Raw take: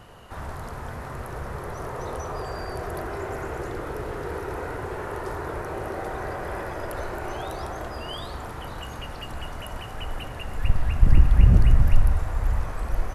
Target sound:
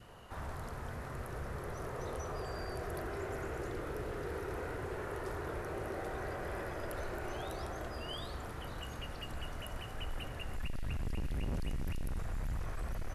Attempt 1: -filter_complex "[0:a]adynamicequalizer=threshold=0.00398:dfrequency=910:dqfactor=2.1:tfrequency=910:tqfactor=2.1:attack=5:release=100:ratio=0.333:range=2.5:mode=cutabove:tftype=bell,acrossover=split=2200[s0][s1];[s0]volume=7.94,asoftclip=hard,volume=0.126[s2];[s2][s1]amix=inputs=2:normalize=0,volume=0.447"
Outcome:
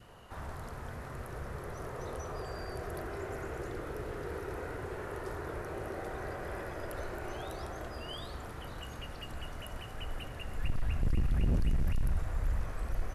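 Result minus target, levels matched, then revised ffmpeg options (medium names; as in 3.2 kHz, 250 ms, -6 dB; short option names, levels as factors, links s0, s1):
overload inside the chain: distortion -6 dB
-filter_complex "[0:a]adynamicequalizer=threshold=0.00398:dfrequency=910:dqfactor=2.1:tfrequency=910:tqfactor=2.1:attack=5:release=100:ratio=0.333:range=2.5:mode=cutabove:tftype=bell,acrossover=split=2200[s0][s1];[s0]volume=22.4,asoftclip=hard,volume=0.0447[s2];[s2][s1]amix=inputs=2:normalize=0,volume=0.447"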